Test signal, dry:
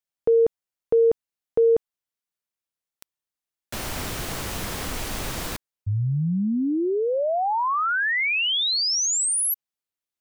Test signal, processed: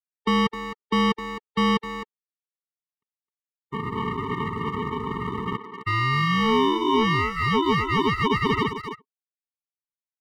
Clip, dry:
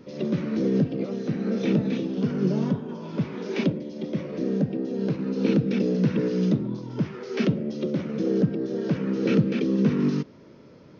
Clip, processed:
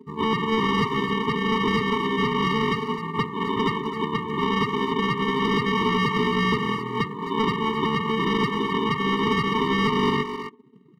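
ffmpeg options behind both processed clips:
-filter_complex "[0:a]aresample=8000,acrusher=samples=12:mix=1:aa=0.000001,aresample=44100,highpass=f=360:p=1,afftdn=nr=30:nf=-41,adynamicequalizer=threshold=0.00708:dfrequency=730:dqfactor=1.9:tfrequency=730:tqfactor=1.9:attack=5:release=100:ratio=0.438:range=2:mode=cutabove:tftype=bell,aecho=1:1:1.5:0.85,asplit=2[a][b];[b]acrusher=bits=3:mode=log:mix=0:aa=0.000001,volume=-10dB[c];[a][c]amix=inputs=2:normalize=0,asplit=2[d][e];[e]highpass=f=720:p=1,volume=23dB,asoftclip=type=tanh:threshold=-3.5dB[f];[d][f]amix=inputs=2:normalize=0,lowpass=f=1.4k:p=1,volume=-6dB,alimiter=limit=-10.5dB:level=0:latency=1:release=228,asplit=2[g][h];[h]adelay=260,highpass=300,lowpass=3.4k,asoftclip=type=hard:threshold=-19dB,volume=-7dB[i];[g][i]amix=inputs=2:normalize=0,afftfilt=real='re*eq(mod(floor(b*sr/1024/450),2),0)':imag='im*eq(mod(floor(b*sr/1024/450),2),0)':win_size=1024:overlap=0.75,volume=2.5dB"

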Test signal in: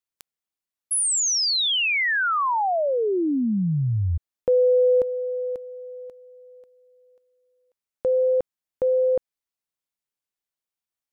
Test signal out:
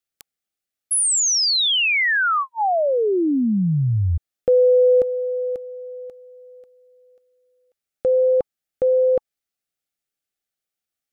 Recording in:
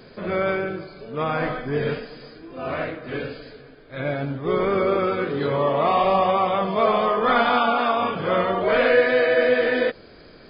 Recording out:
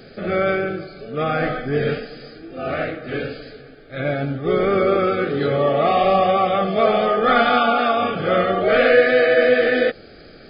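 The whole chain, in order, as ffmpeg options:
-af "asuperstop=centerf=990:order=8:qfactor=3.7,volume=3.5dB"

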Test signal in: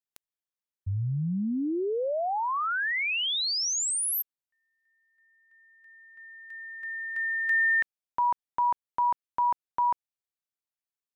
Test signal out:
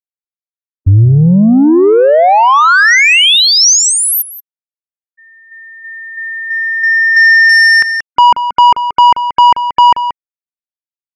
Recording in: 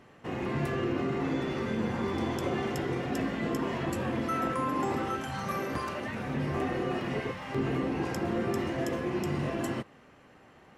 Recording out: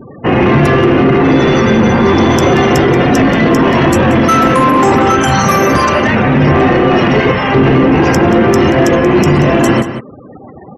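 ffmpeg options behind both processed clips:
-filter_complex "[0:a]afftfilt=real='re*gte(hypot(re,im),0.00447)':imag='im*gte(hypot(re,im),0.00447)':win_size=1024:overlap=0.75,acrossover=split=2900[a][b];[b]acompressor=threshold=-39dB:ratio=4:attack=1:release=60[c];[a][c]amix=inputs=2:normalize=0,asoftclip=type=tanh:threshold=-26.5dB,equalizer=f=5.9k:t=o:w=0.22:g=11,asplit=2[d][e];[e]adelay=180.8,volume=-12dB,highshelf=f=4k:g=-4.07[f];[d][f]amix=inputs=2:normalize=0,alimiter=level_in=28dB:limit=-1dB:release=50:level=0:latency=1,volume=-1.5dB"

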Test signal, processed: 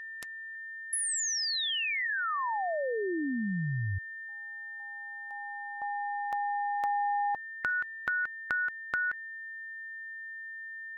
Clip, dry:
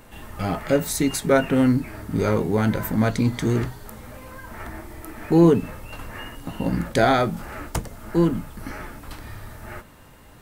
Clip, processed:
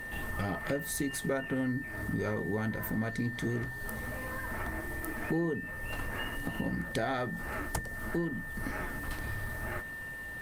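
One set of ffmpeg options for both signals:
-af "acompressor=threshold=-34dB:ratio=4,aeval=exprs='val(0)+0.00891*sin(2*PI*1800*n/s)':c=same,volume=1.5dB" -ar 48000 -c:a libopus -b:a 32k

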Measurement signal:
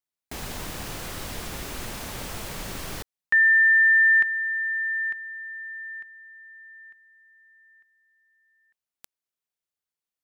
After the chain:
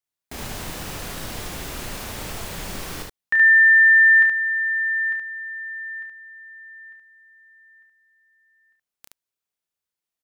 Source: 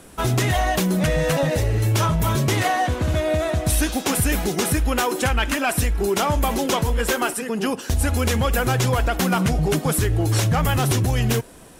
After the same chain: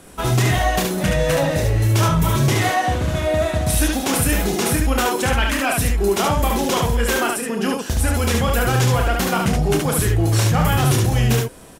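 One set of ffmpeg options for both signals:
-af "aecho=1:1:30|72:0.501|0.708"

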